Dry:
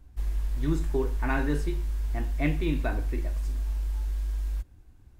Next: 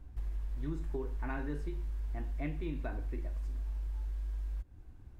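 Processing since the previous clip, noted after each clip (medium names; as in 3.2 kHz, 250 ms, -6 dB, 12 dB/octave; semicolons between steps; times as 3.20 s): treble shelf 3.2 kHz -9.5 dB; compression 3:1, threshold -39 dBFS, peak gain reduction 13.5 dB; trim +1.5 dB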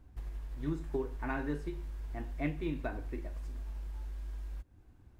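bass shelf 63 Hz -10 dB; upward expansion 1.5:1, over -49 dBFS; trim +5.5 dB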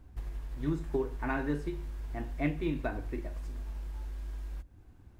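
reverberation, pre-delay 48 ms, DRR 23.5 dB; trim +3.5 dB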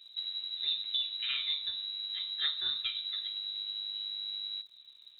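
frequency inversion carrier 3.9 kHz; crackle 98 per s -55 dBFS; trim -2.5 dB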